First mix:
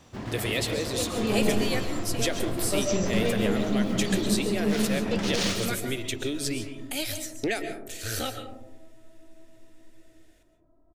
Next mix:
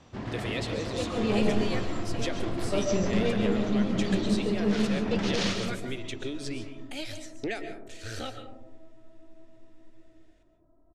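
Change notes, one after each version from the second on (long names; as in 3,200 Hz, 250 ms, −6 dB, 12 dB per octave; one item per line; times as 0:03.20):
speech −4.5 dB
master: add high-frequency loss of the air 83 metres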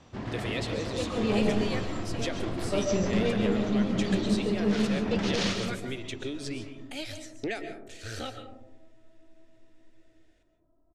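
second sound −5.5 dB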